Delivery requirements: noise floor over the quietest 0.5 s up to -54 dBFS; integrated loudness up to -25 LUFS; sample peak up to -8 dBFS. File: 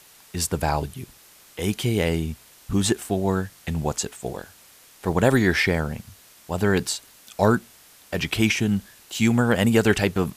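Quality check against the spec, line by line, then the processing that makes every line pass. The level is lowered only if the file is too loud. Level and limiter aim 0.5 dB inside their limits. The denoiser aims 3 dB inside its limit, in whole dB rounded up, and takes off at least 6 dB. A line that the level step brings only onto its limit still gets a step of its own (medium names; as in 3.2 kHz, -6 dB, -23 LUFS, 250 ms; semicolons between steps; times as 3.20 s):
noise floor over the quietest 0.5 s -51 dBFS: fail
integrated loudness -23.5 LUFS: fail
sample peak -5.0 dBFS: fail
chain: noise reduction 6 dB, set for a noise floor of -51 dBFS; trim -2 dB; peak limiter -8.5 dBFS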